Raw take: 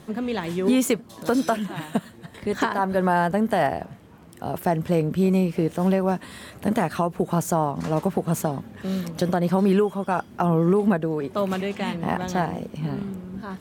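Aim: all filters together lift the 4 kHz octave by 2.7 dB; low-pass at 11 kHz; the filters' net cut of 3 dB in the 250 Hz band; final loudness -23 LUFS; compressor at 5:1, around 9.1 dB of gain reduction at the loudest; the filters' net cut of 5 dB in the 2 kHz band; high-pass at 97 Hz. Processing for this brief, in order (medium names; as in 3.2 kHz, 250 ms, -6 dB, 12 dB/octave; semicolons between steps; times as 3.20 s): high-pass 97 Hz; low-pass 11 kHz; peaking EQ 250 Hz -4 dB; peaking EQ 2 kHz -8 dB; peaking EQ 4 kHz +6.5 dB; compression 5:1, threshold -28 dBFS; trim +10.5 dB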